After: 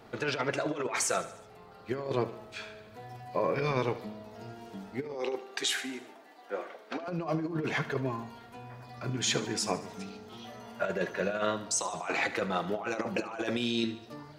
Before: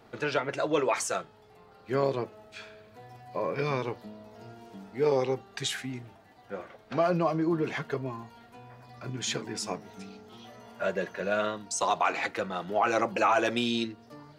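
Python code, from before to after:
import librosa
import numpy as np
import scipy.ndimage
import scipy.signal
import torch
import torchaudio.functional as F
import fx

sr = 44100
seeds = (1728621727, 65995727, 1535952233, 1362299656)

y = fx.over_compress(x, sr, threshold_db=-30.0, ratio=-0.5)
y = fx.highpass(y, sr, hz=280.0, slope=24, at=(5.14, 7.08))
y = fx.echo_feedback(y, sr, ms=74, feedback_pct=55, wet_db=-15.0)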